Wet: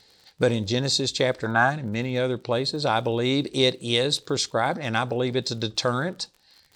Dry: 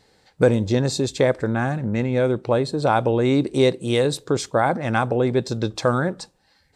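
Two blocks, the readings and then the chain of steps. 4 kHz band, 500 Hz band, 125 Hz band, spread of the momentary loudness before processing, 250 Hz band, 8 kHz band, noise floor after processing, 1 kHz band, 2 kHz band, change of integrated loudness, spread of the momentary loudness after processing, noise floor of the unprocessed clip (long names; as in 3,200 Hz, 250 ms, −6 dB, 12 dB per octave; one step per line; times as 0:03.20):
+6.5 dB, −5.0 dB, −5.5 dB, 5 LU, −5.5 dB, +1.5 dB, −60 dBFS, −2.5 dB, +1.0 dB, −3.0 dB, 5 LU, −62 dBFS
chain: gain on a spectral selection 0:01.46–0:01.70, 600–1,700 Hz +11 dB
parametric band 4,200 Hz +13 dB 1.6 octaves
surface crackle 64 per second −35 dBFS
level −5.5 dB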